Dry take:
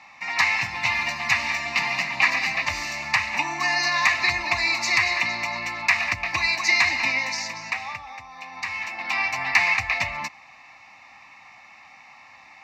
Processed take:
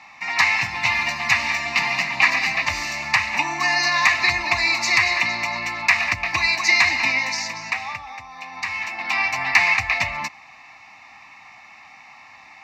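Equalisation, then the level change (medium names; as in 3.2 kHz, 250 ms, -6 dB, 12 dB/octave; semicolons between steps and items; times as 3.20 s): band-stop 550 Hz, Q 12; +3.0 dB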